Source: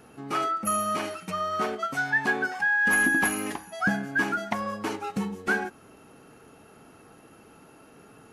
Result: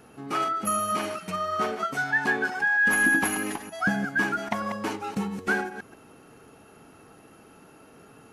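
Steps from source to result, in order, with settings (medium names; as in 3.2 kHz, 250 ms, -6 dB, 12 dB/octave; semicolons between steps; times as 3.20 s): chunks repeated in reverse 132 ms, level -9 dB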